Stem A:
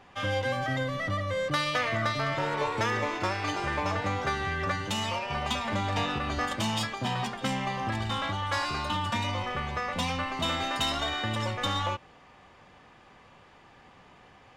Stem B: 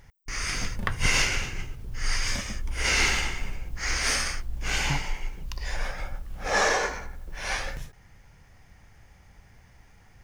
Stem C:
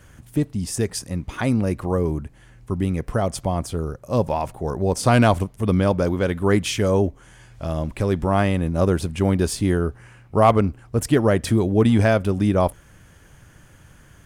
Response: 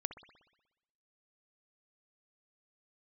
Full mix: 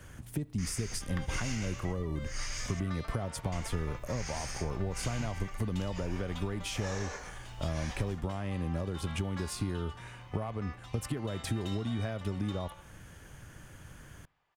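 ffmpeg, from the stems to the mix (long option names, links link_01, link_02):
-filter_complex "[0:a]highpass=540,adelay=850,volume=-16dB,asplit=2[link_01][link_02];[link_02]volume=-5dB[link_03];[1:a]equalizer=frequency=7000:width_type=o:width=0.68:gain=6.5,adelay=300,volume=-11.5dB,asplit=3[link_04][link_05][link_06];[link_04]atrim=end=2.8,asetpts=PTS-STARTPTS,afade=type=out:start_time=2.796:duration=0.004:curve=hsin[link_07];[link_05]atrim=start=2.8:end=3.52,asetpts=PTS-STARTPTS,volume=0[link_08];[link_06]atrim=start=3.52,asetpts=PTS-STARTPTS,afade=type=in:duration=0.004:curve=hsin[link_09];[link_07][link_08][link_09]concat=n=3:v=0:a=1[link_10];[2:a]alimiter=limit=-12dB:level=0:latency=1:release=336,acompressor=threshold=-27dB:ratio=6,volume=-2.5dB,asplit=3[link_11][link_12][link_13];[link_12]volume=-15.5dB[link_14];[link_13]apad=whole_len=679608[link_15];[link_01][link_15]sidechaingate=range=-33dB:threshold=-38dB:ratio=16:detection=peak[link_16];[3:a]atrim=start_sample=2205[link_17];[link_03][link_14]amix=inputs=2:normalize=0[link_18];[link_18][link_17]afir=irnorm=-1:irlink=0[link_19];[link_16][link_10][link_11][link_19]amix=inputs=4:normalize=0,acrossover=split=170[link_20][link_21];[link_21]acompressor=threshold=-35dB:ratio=6[link_22];[link_20][link_22]amix=inputs=2:normalize=0"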